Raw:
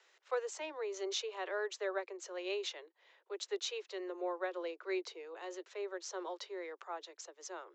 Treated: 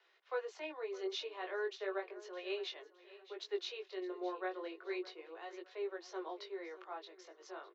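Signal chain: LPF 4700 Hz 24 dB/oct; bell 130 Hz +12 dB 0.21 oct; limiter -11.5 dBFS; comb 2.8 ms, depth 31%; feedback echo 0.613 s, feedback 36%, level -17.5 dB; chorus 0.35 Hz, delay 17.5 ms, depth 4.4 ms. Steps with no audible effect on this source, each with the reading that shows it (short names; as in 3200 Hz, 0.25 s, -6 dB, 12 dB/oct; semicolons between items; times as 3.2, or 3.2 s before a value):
bell 130 Hz: input band starts at 300 Hz; limiter -11.5 dBFS: input peak -23.5 dBFS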